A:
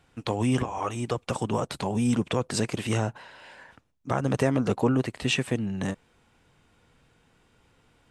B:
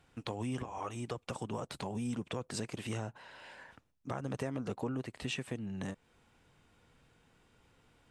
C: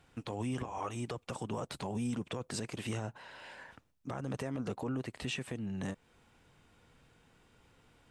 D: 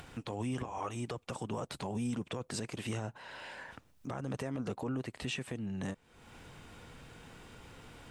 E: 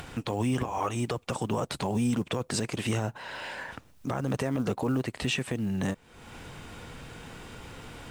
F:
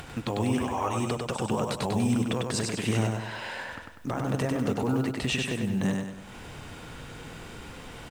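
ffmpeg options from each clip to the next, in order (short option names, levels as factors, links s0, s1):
-af "acompressor=threshold=0.0141:ratio=2,volume=0.631"
-af "alimiter=level_in=1.88:limit=0.0631:level=0:latency=1:release=14,volume=0.531,volume=1.26"
-af "acompressor=mode=upward:threshold=0.01:ratio=2.5"
-af "acrusher=bits=8:mode=log:mix=0:aa=0.000001,volume=2.66"
-af "aecho=1:1:98|196|294|392|490|588:0.668|0.294|0.129|0.0569|0.0251|0.011"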